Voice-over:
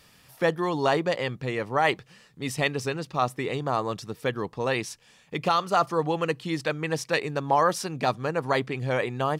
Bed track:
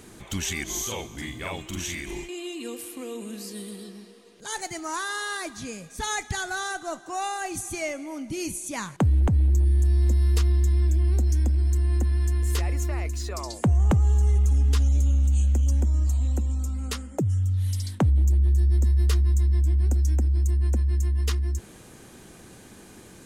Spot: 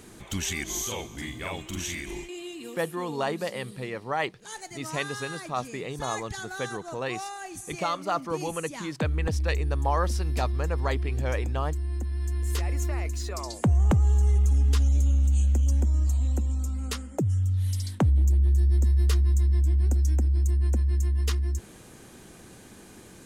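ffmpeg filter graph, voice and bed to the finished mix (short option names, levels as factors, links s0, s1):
-filter_complex "[0:a]adelay=2350,volume=0.531[s0];[1:a]volume=1.88,afade=t=out:st=1.99:d=0.93:silence=0.473151,afade=t=in:st=12.09:d=0.74:silence=0.473151[s1];[s0][s1]amix=inputs=2:normalize=0"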